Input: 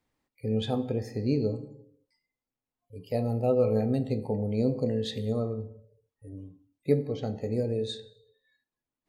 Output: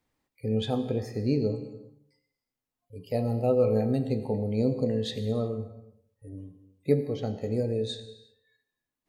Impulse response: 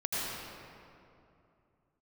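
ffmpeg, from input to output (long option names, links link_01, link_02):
-filter_complex "[0:a]asplit=2[link_01][link_02];[1:a]atrim=start_sample=2205,afade=type=out:start_time=0.43:duration=0.01,atrim=end_sample=19404,highshelf=frequency=4200:gain=10[link_03];[link_02][link_03]afir=irnorm=-1:irlink=0,volume=-21dB[link_04];[link_01][link_04]amix=inputs=2:normalize=0"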